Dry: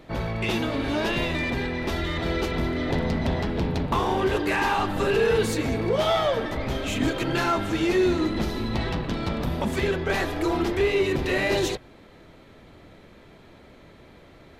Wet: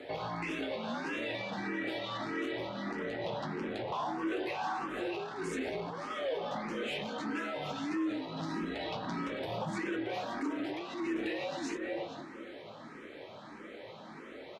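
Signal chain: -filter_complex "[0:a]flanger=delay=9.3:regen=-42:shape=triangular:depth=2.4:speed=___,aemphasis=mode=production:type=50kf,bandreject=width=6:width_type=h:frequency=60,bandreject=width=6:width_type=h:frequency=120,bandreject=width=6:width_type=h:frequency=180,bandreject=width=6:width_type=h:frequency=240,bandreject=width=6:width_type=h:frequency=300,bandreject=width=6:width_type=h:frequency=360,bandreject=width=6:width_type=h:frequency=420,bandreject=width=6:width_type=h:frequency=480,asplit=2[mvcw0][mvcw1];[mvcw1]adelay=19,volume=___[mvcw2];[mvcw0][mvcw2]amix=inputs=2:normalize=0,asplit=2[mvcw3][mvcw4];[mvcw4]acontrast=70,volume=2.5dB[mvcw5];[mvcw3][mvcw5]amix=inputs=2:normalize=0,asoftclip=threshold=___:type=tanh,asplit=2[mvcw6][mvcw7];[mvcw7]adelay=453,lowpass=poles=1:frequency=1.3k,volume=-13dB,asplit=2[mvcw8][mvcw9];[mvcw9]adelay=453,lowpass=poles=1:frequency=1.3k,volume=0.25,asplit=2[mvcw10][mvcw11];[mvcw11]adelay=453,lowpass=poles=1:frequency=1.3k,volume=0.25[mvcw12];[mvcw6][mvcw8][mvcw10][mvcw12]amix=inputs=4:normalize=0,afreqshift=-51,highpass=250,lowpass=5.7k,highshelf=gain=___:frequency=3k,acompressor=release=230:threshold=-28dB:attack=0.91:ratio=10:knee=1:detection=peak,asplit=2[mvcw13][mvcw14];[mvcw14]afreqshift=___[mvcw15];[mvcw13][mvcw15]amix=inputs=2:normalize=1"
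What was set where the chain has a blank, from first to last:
0.34, -10.5dB, -14.5dB, -10.5, 1.6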